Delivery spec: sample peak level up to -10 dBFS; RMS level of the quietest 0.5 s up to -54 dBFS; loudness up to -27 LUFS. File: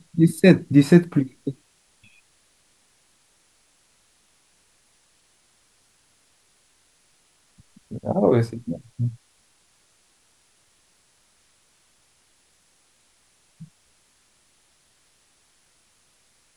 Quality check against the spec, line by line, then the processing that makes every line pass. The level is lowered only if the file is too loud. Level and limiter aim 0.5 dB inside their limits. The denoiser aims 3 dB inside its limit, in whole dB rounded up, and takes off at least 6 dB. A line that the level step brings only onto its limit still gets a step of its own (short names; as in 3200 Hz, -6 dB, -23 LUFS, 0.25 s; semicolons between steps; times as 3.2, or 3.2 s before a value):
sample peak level -2.0 dBFS: fail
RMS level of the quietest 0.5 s -62 dBFS: OK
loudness -20.0 LUFS: fail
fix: gain -7.5 dB; limiter -10.5 dBFS